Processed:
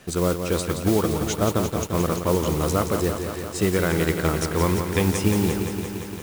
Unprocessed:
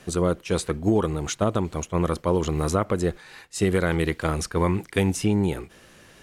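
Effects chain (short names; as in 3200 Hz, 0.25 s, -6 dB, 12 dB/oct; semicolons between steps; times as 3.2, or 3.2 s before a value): modulation noise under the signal 15 dB; lo-fi delay 0.173 s, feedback 80%, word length 7-bit, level -7 dB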